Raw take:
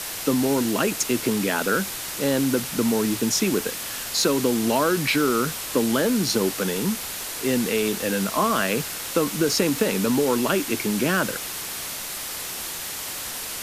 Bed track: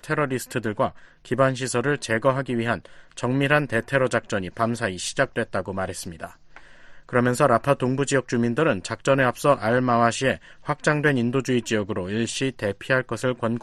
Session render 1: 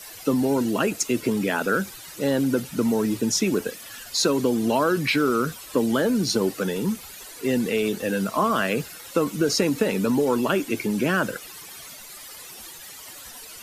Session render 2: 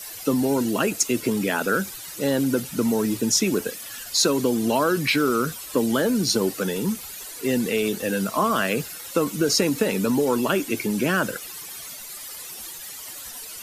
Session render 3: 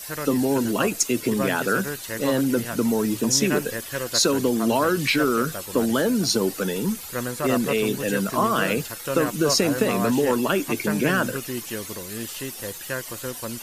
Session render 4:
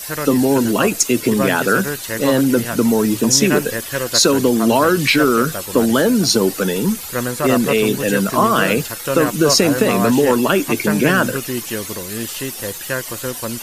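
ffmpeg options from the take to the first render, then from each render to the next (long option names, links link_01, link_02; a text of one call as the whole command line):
ffmpeg -i in.wav -af "afftdn=noise_reduction=14:noise_floor=-32" out.wav
ffmpeg -i in.wav -af "highshelf=frequency=5000:gain=6" out.wav
ffmpeg -i in.wav -i bed.wav -filter_complex "[1:a]volume=-9dB[link_01];[0:a][link_01]amix=inputs=2:normalize=0" out.wav
ffmpeg -i in.wav -af "volume=7dB,alimiter=limit=-2dB:level=0:latency=1" out.wav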